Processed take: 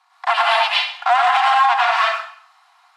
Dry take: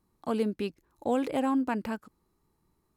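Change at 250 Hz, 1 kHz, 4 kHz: under -40 dB, +22.0 dB, +27.5 dB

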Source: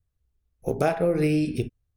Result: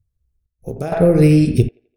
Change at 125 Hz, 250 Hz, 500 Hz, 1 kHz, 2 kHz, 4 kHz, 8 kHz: +14.0 dB, +10.5 dB, +7.5 dB, +1.5 dB, +3.0 dB, +6.0 dB, +7.5 dB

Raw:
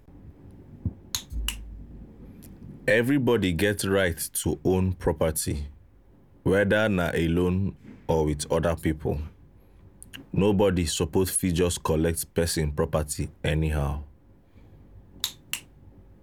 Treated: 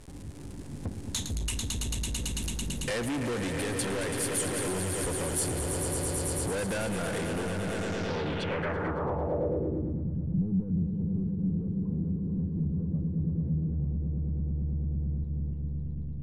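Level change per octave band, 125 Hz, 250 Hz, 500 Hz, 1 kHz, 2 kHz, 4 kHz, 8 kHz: -1.5 dB, -4.0 dB, -8.0 dB, -4.5 dB, -7.0 dB, -4.5 dB, -0.5 dB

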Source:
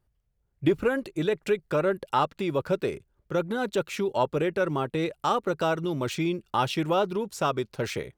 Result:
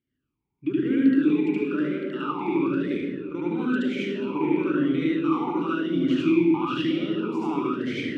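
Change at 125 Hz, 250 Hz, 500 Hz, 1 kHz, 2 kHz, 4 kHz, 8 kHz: -1.5 dB, +9.0 dB, -2.5 dB, -4.0 dB, 0.0 dB, -1.5 dB, under -10 dB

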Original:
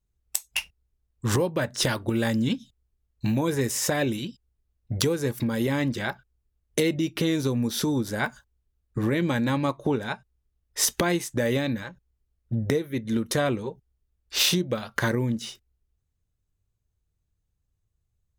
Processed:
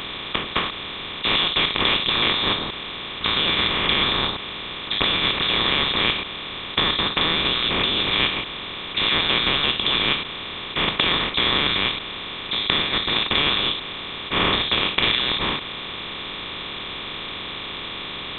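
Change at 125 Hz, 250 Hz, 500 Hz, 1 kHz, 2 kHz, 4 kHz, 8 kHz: -5.0 dB, -4.5 dB, -2.0 dB, +9.0 dB, +10.0 dB, +15.5 dB, under -40 dB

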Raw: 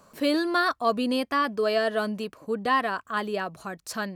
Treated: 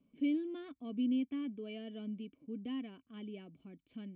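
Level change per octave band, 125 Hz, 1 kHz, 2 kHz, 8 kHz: no reading, -34.0 dB, -27.0 dB, under -35 dB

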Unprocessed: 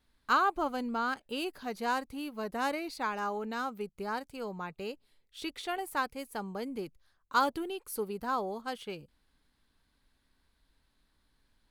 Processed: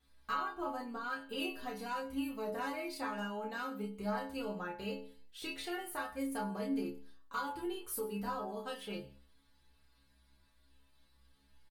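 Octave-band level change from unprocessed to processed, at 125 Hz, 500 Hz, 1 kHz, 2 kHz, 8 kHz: +0.5 dB, -4.0 dB, -8.0 dB, -6.0 dB, -1.5 dB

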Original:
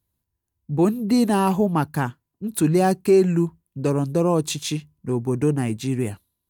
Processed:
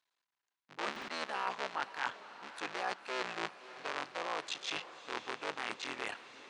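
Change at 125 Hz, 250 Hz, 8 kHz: -39.0 dB, -31.0 dB, -18.0 dB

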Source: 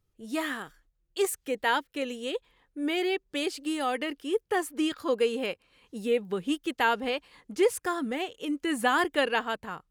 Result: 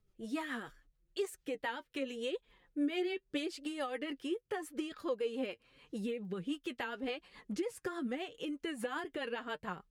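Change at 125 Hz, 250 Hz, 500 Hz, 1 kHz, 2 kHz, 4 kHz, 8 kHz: -2.5 dB, -7.0 dB, -10.0 dB, -14.0 dB, -12.0 dB, -10.5 dB, -13.5 dB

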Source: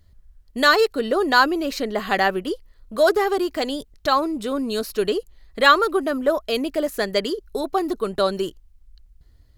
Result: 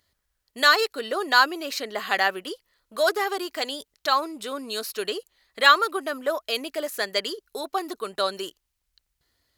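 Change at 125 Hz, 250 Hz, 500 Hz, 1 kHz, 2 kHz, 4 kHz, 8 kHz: no reading, -11.5 dB, -7.0 dB, -2.5 dB, -1.0 dB, +0.5 dB, +1.0 dB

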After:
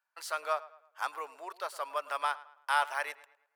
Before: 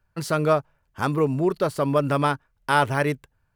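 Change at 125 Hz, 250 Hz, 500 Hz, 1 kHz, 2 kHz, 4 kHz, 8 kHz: under -40 dB, under -35 dB, -17.5 dB, -7.5 dB, -7.0 dB, -7.0 dB, -7.0 dB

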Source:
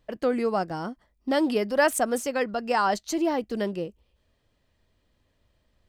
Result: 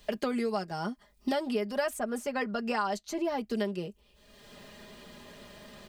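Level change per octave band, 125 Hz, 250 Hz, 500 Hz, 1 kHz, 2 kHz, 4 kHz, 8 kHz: -3.0 dB, -5.0 dB, -6.5 dB, -7.0 dB, -7.0 dB, -4.0 dB, -10.0 dB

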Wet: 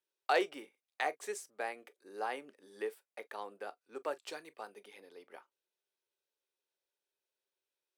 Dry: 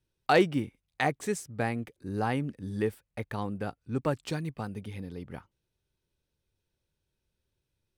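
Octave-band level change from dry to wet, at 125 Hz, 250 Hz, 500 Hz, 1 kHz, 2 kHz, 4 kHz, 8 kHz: under -35 dB, -17.5 dB, -8.0 dB, -6.0 dB, -6.0 dB, -6.0 dB, -6.0 dB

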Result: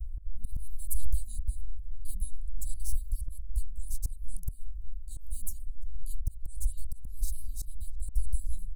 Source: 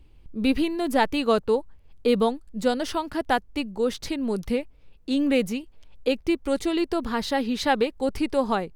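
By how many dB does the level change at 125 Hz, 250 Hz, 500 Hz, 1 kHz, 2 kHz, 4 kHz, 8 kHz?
+3.5 dB, -36.5 dB, under -40 dB, under -40 dB, under -40 dB, -27.5 dB, -0.5 dB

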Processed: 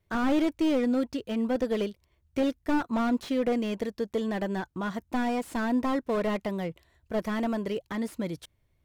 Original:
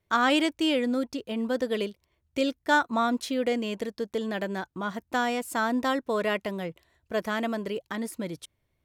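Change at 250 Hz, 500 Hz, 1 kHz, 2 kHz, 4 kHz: +2.0 dB, -1.0 dB, -5.0 dB, -7.5 dB, -8.5 dB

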